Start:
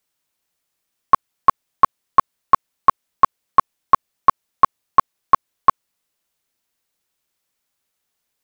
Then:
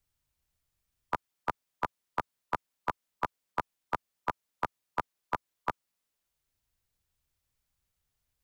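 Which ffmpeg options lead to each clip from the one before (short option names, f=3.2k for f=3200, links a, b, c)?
-filter_complex "[0:a]afftfilt=real='re*lt(hypot(re,im),1)':imag='im*lt(hypot(re,im),1)':win_size=1024:overlap=0.75,acrossover=split=100|330|1000[a][b][c][d];[a]acompressor=mode=upward:threshold=-57dB:ratio=2.5[e];[e][b][c][d]amix=inputs=4:normalize=0,volume=-8dB"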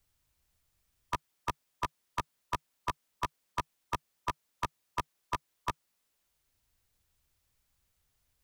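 -filter_complex "[0:a]equalizer=f=150:w=7.4:g=-3,acrossover=split=2800[a][b];[a]asoftclip=type=hard:threshold=-32dB[c];[c][b]amix=inputs=2:normalize=0,volume=5.5dB"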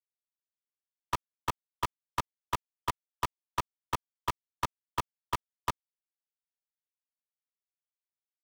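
-af "acrusher=bits=4:mix=0:aa=0.5"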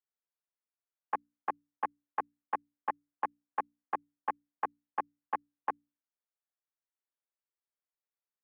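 -af "bandreject=f=60:t=h:w=6,bandreject=f=120:t=h:w=6,bandreject=f=180:t=h:w=6,bandreject=f=240:t=h:w=6,bandreject=f=300:t=h:w=6,bandreject=f=360:t=h:w=6,bandreject=f=420:t=h:w=6,highpass=f=460:t=q:w=0.5412,highpass=f=460:t=q:w=1.307,lowpass=f=2.1k:t=q:w=0.5176,lowpass=f=2.1k:t=q:w=0.7071,lowpass=f=2.1k:t=q:w=1.932,afreqshift=-130"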